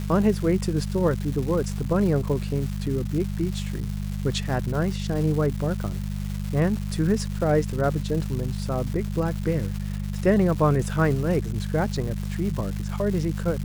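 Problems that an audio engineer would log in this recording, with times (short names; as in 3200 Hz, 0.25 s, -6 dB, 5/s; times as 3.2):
crackle 450/s -31 dBFS
hum 50 Hz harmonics 4 -29 dBFS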